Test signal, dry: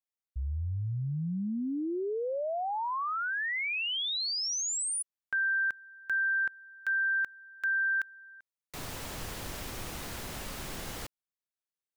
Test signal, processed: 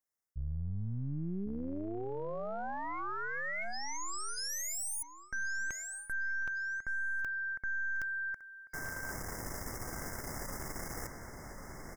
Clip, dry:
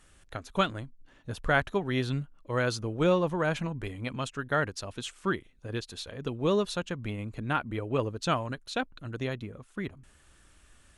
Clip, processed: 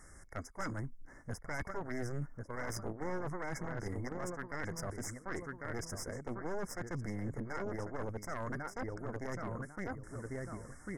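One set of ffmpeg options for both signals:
-filter_complex "[0:a]asplit=2[a][b];[b]adelay=1097,lowpass=f=4.7k:p=1,volume=-10dB,asplit=2[c][d];[d]adelay=1097,lowpass=f=4.7k:p=1,volume=0.18,asplit=2[e][f];[f]adelay=1097,lowpass=f=4.7k:p=1,volume=0.18[g];[a][c][e][g]amix=inputs=4:normalize=0,aeval=exprs='0.299*(cos(1*acos(clip(val(0)/0.299,-1,1)))-cos(1*PI/2))+0.106*(cos(6*acos(clip(val(0)/0.299,-1,1)))-cos(6*PI/2))':c=same,afftfilt=real='re*(1-between(b*sr/4096,2200,4900))':imag='im*(1-between(b*sr/4096,2200,4900))':win_size=4096:overlap=0.75,areverse,acompressor=threshold=-35dB:ratio=10:attack=0.28:release=223:knee=6:detection=peak,areverse,volume=4dB"

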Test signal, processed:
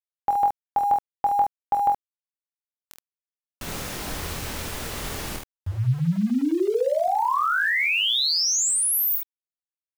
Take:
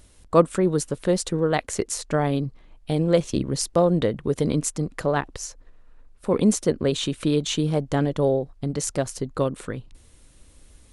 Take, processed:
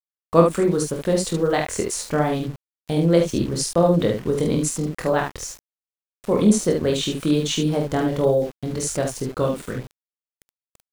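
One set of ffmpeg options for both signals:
-af "aecho=1:1:24|47|73:0.562|0.422|0.531,aeval=exprs='val(0)*gte(abs(val(0)),0.0141)':c=same"

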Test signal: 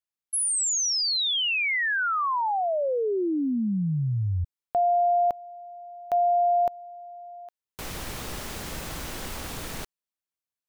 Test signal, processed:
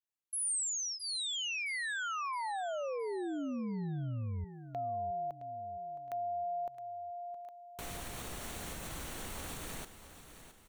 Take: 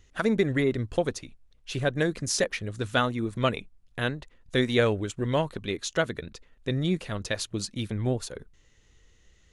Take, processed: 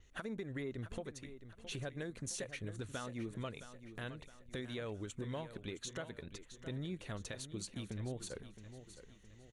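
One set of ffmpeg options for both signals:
-filter_complex "[0:a]acompressor=threshold=-30dB:ratio=10:attack=0.48:release=274:knee=1:detection=rms,adynamicequalizer=threshold=0.00141:dfrequency=8800:dqfactor=2.3:tfrequency=8800:tqfactor=2.3:attack=5:release=100:ratio=0.375:range=2:mode=boostabove:tftype=bell,bandreject=f=5k:w=6.9,asplit=2[a][b];[b]aecho=0:1:666|1332|1998|2664:0.251|0.108|0.0464|0.02[c];[a][c]amix=inputs=2:normalize=0,volume=-5dB"

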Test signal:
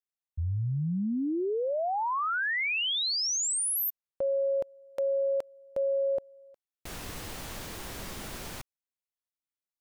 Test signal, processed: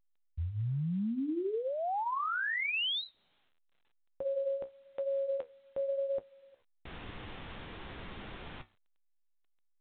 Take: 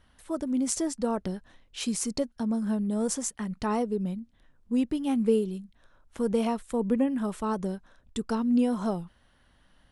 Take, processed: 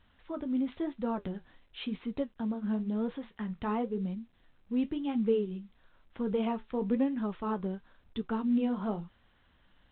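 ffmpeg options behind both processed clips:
-af "flanger=delay=9.3:depth=6.4:regen=-54:speed=0.97:shape=sinusoidal,equalizer=f=600:w=5.7:g=-3.5" -ar 8000 -c:a pcm_alaw

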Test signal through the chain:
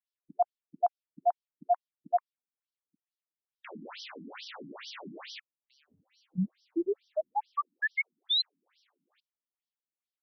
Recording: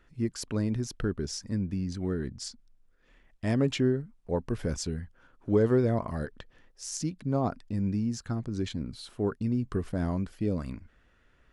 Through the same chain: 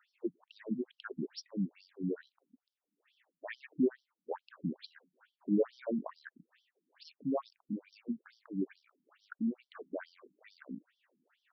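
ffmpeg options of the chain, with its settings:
-af "acrusher=bits=9:mode=log:mix=0:aa=0.000001,afftfilt=real='re*between(b*sr/1024,220*pow(4300/220,0.5+0.5*sin(2*PI*2.3*pts/sr))/1.41,220*pow(4300/220,0.5+0.5*sin(2*PI*2.3*pts/sr))*1.41)':imag='im*between(b*sr/1024,220*pow(4300/220,0.5+0.5*sin(2*PI*2.3*pts/sr))/1.41,220*pow(4300/220,0.5+0.5*sin(2*PI*2.3*pts/sr))*1.41)':win_size=1024:overlap=0.75"

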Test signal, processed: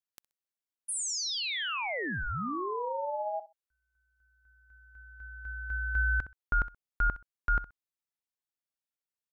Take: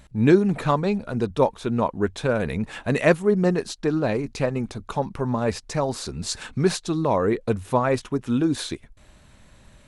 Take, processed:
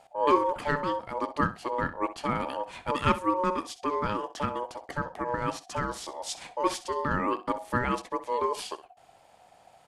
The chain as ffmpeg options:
-af "aecho=1:1:64|128:0.178|0.032,aeval=exprs='val(0)*sin(2*PI*730*n/s)':c=same,volume=-4dB"

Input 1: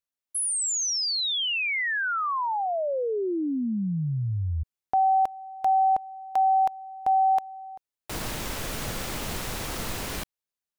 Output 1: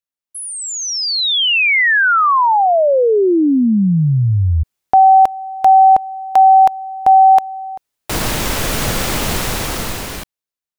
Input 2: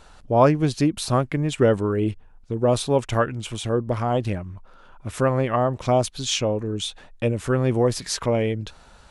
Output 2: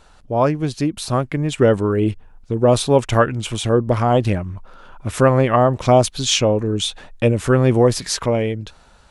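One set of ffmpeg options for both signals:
-af "dynaudnorm=f=270:g=9:m=16dB,volume=-1dB"

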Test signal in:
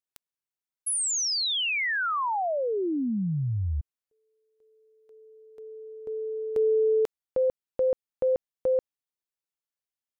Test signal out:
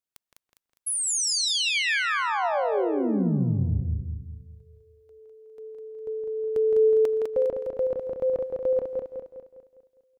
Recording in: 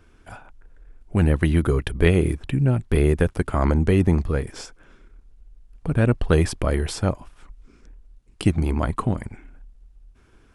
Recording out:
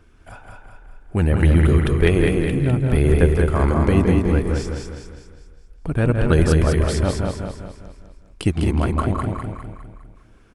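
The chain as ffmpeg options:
-filter_complex "[0:a]asplit=2[a][b];[b]adelay=165,lowpass=f=2.5k:p=1,volume=-5dB,asplit=2[c][d];[d]adelay=165,lowpass=f=2.5k:p=1,volume=0.18,asplit=2[e][f];[f]adelay=165,lowpass=f=2.5k:p=1,volume=0.18[g];[c][e][g]amix=inputs=3:normalize=0[h];[a][h]amix=inputs=2:normalize=0,aphaser=in_gain=1:out_gain=1:delay=4.4:decay=0.21:speed=0.62:type=triangular,asplit=2[i][j];[j]aecho=0:1:203|406|609|812|1015|1218:0.631|0.29|0.134|0.0614|0.0283|0.013[k];[i][k]amix=inputs=2:normalize=0"

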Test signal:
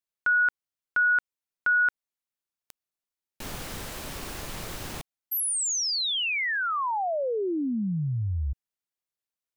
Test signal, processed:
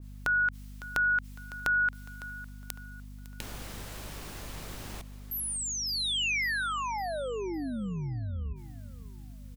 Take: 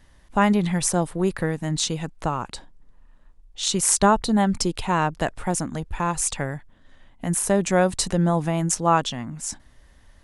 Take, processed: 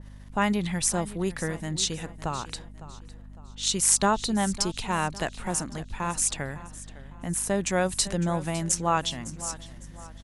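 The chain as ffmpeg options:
-af "acompressor=mode=upward:threshold=-43dB:ratio=2.5:attack=45:release=24:knee=2.83:detection=peak,aeval=exprs='val(0)+0.0141*(sin(2*PI*50*n/s)+sin(2*PI*2*50*n/s)/2+sin(2*PI*3*50*n/s)/3+sin(2*PI*4*50*n/s)/4+sin(2*PI*5*50*n/s)/5)':c=same,aecho=1:1:556|1112|1668|2224:0.158|0.0682|0.0293|0.0126,adynamicequalizer=threshold=0.0178:dfrequency=1600:dqfactor=0.7:tfrequency=1600:tqfactor=0.7:attack=5:release=100:ratio=0.375:range=3:mode=boostabove:tftype=highshelf,volume=-6.5dB"

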